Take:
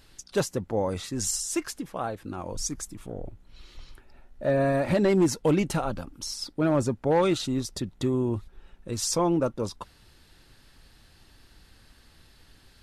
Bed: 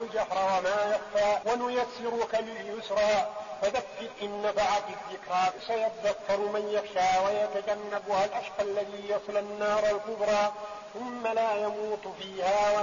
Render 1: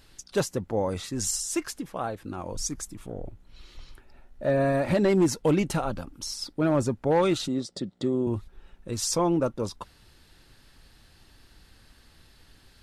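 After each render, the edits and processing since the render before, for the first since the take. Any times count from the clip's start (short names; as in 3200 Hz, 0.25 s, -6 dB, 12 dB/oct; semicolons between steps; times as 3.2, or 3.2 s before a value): 7.48–8.27 speaker cabinet 170–7900 Hz, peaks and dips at 190 Hz +4 dB, 550 Hz +5 dB, 990 Hz -8 dB, 1600 Hz -5 dB, 2500 Hz -9 dB, 6300 Hz -8 dB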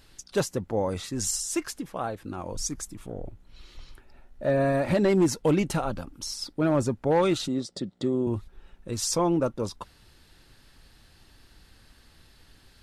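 nothing audible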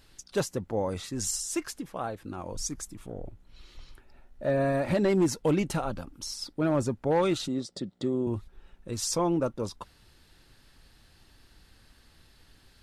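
gain -2.5 dB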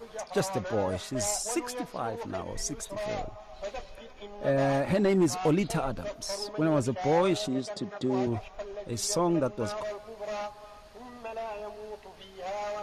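add bed -9.5 dB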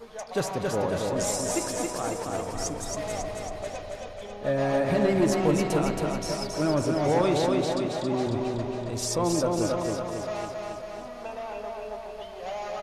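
feedback echo 0.273 s, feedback 59%, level -3.5 dB; spring tank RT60 3.6 s, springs 34 ms, chirp 70 ms, DRR 8.5 dB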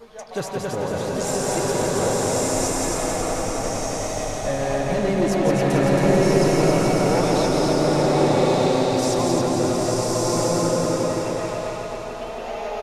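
echo 0.17 s -4.5 dB; bloom reverb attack 1.25 s, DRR -4.5 dB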